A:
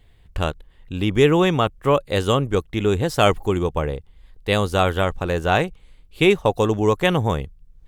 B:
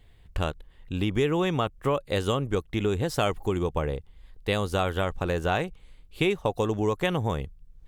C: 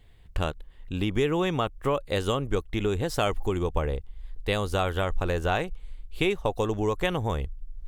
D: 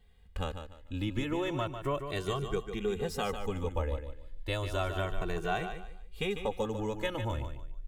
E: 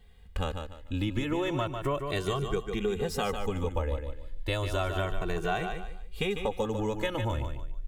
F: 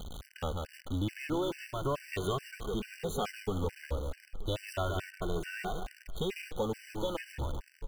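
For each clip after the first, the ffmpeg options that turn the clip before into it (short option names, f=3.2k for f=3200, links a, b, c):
-af "acompressor=threshold=-21dB:ratio=3,volume=-2dB"
-af "asubboost=boost=4.5:cutoff=58"
-filter_complex "[0:a]aecho=1:1:148|296|444:0.376|0.105|0.0295,asplit=2[a][b];[b]adelay=2.1,afreqshift=0.33[c];[a][c]amix=inputs=2:normalize=1,volume=-4dB"
-af "acompressor=threshold=-34dB:ratio=2,volume=6dB"
-af "aeval=exprs='val(0)+0.5*0.0237*sgn(val(0))':c=same,aecho=1:1:935:0.106,afftfilt=real='re*gt(sin(2*PI*2.3*pts/sr)*(1-2*mod(floor(b*sr/1024/1500),2)),0)':imag='im*gt(sin(2*PI*2.3*pts/sr)*(1-2*mod(floor(b*sr/1024/1500),2)),0)':win_size=1024:overlap=0.75,volume=-4dB"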